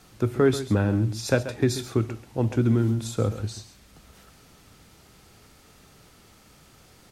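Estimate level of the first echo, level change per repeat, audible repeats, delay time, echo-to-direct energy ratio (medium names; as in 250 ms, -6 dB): -13.0 dB, no regular repeats, 1, 135 ms, -13.0 dB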